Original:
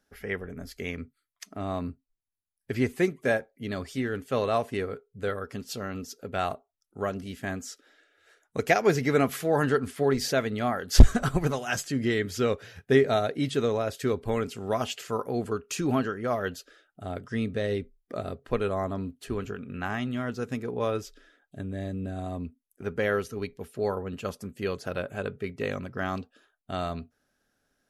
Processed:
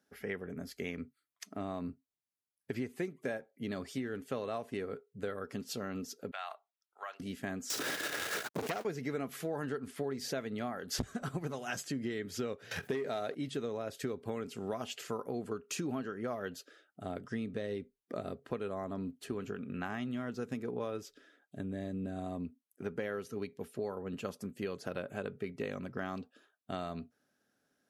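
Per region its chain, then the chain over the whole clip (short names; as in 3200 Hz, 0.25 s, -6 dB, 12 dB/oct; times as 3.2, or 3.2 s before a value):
6.31–7.2 HPF 820 Hz 24 dB/oct + resonant high shelf 5000 Hz -6.5 dB, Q 1.5 + compressor 3:1, threshold -34 dBFS
7.7–8.85 zero-crossing step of -23.5 dBFS + core saturation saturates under 2400 Hz
12.71–13.35 sample leveller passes 1 + low shelf 270 Hz -8 dB + fast leveller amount 50%
whole clip: HPF 170 Hz 12 dB/oct; low shelf 300 Hz +6.5 dB; compressor 6:1, threshold -30 dBFS; gain -4 dB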